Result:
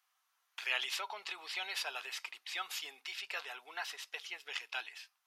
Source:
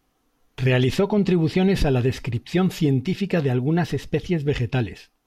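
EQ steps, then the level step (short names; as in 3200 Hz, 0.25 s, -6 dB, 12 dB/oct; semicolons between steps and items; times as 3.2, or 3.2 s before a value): HPF 1000 Hz 24 dB/oct; dynamic EQ 1800 Hz, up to -6 dB, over -48 dBFS, Q 4.4; -5.0 dB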